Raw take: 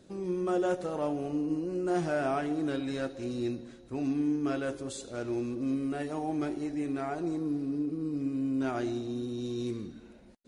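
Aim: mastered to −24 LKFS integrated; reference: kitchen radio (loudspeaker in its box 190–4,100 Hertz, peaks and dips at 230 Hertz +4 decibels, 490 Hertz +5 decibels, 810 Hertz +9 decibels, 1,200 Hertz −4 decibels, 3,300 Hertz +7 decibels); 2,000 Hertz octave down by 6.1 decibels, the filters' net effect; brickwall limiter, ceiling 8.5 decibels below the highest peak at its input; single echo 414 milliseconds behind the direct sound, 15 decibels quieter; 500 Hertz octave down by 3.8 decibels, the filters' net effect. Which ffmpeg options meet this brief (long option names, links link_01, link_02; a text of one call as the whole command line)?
ffmpeg -i in.wav -af "equalizer=frequency=500:width_type=o:gain=-8.5,equalizer=frequency=2000:width_type=o:gain=-8.5,alimiter=level_in=7dB:limit=-24dB:level=0:latency=1,volume=-7dB,highpass=190,equalizer=frequency=230:width_type=q:width=4:gain=4,equalizer=frequency=490:width_type=q:width=4:gain=5,equalizer=frequency=810:width_type=q:width=4:gain=9,equalizer=frequency=1200:width_type=q:width=4:gain=-4,equalizer=frequency=3300:width_type=q:width=4:gain=7,lowpass=frequency=4100:width=0.5412,lowpass=frequency=4100:width=1.3066,aecho=1:1:414:0.178,volume=13.5dB" out.wav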